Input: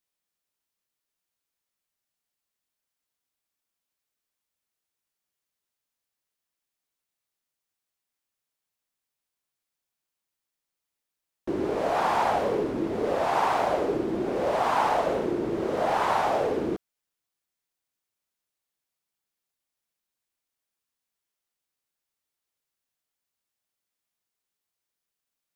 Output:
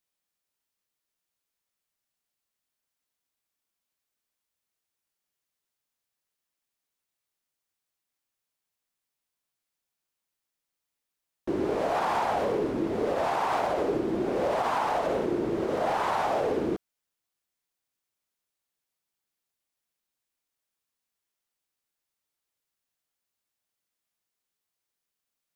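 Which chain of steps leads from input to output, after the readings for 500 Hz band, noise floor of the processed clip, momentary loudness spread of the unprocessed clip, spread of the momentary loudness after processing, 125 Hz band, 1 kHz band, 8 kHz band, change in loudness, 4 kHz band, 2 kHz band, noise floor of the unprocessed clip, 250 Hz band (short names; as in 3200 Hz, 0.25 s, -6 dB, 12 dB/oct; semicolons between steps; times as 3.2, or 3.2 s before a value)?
-1.5 dB, under -85 dBFS, 5 LU, 3 LU, -0.5 dB, -2.5 dB, -2.0 dB, -2.0 dB, -2.0 dB, -2.5 dB, under -85 dBFS, -0.5 dB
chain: limiter -18.5 dBFS, peak gain reduction 5.5 dB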